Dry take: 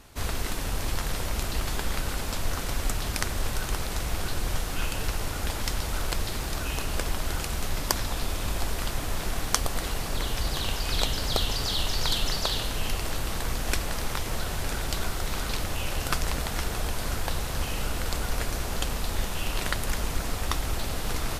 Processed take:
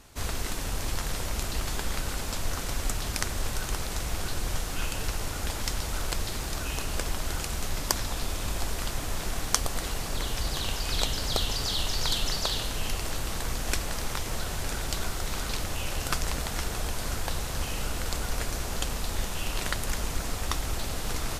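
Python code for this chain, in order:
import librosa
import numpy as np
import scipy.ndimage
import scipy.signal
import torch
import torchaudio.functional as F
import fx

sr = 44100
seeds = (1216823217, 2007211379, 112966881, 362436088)

y = fx.peak_eq(x, sr, hz=6900.0, db=3.5, octaves=0.99)
y = y * librosa.db_to_amplitude(-2.0)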